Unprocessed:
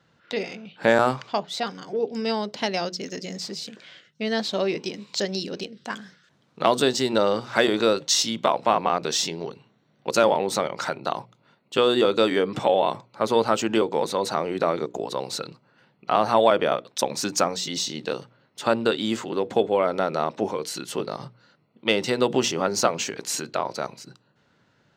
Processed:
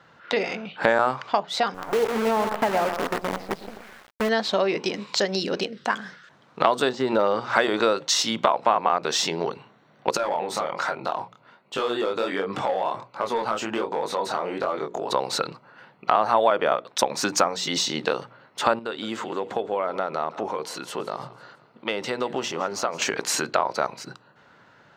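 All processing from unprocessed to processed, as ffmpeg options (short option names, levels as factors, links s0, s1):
-filter_complex "[0:a]asettb=1/sr,asplit=3[s0][s1][s2];[s0]atrim=end=1.744[s3];[s1]atrim=start=1.74:end=4.29,asetpts=PTS-STARTPTS,afade=t=in:d=0.004:c=qsin,afade=t=out:st=2.546:d=0.004:c=qsin,lowpass=1500,aecho=1:1:122|244|366|488:0.355|0.135|0.0512|0.0195,atrim=end_sample=112455,acrusher=bits=6:dc=4:mix=0:aa=0.000001[s4];[s2]atrim=start=4.286[s5];[s3][s4]acrossfade=d=0.004:c1=hsin:c2=qsin[s6];[s6][s5]acrossfade=d=0.004:c1=qsin:c2=hsin,asettb=1/sr,asplit=3[s7][s8][s9];[s7]atrim=end=6.894[s10];[s8]atrim=start=6.89:end=7.5,asetpts=PTS-STARTPTS,afade=t=in:d=0.004:c=qsin,afade=t=out:st=0.606:d=0.004:c=qsin,lowpass=7100,deesser=1[s11];[s9]atrim=start=7.496[s12];[s10][s11]acrossfade=d=0.004:c1=hsin:c2=qsin[s13];[s13][s12]acrossfade=d=0.004:c1=qsin:c2=hsin,asettb=1/sr,asplit=3[s14][s15][s16];[s14]atrim=end=10.174[s17];[s15]atrim=start=10.17:end=15.11,asetpts=PTS-STARTPTS,afade=t=in:d=0.004:c=qsin,afade=t=out:st=4.936:d=0.004:c=qsin,asoftclip=type=hard:threshold=0.237,acompressor=threshold=0.0224:ratio=2:attack=3.2:release=140:knee=1:detection=peak,flanger=delay=20:depth=8:speed=1.3[s18];[s16]atrim=start=15.106[s19];[s17][s18]acrossfade=d=0.004:c1=hsin:c2=qsin[s20];[s20][s19]acrossfade=d=0.004:c1=qsin:c2=hsin,asettb=1/sr,asplit=3[s21][s22][s23];[s21]atrim=end=18.794[s24];[s22]atrim=start=18.79:end=23.02,asetpts=PTS-STARTPTS,afade=t=in:d=0.004:c=qsin,afade=t=out:st=4.226:d=0.004:c=qsin,acompressor=threshold=0.00251:ratio=1.5:attack=3.2:release=140:knee=1:detection=peak,aecho=1:1:166|332|498|664:0.133|0.0653|0.032|0.0157,atrim=end_sample=186543[s25];[s23]atrim=start=23.016[s26];[s24][s25]acrossfade=d=0.004:c1=hsin:c2=qsin[s27];[s27][s26]acrossfade=d=0.004:c1=qsin:c2=hsin,equalizer=f=1100:w=0.48:g=11,acompressor=threshold=0.0631:ratio=2.5,volume=1.33"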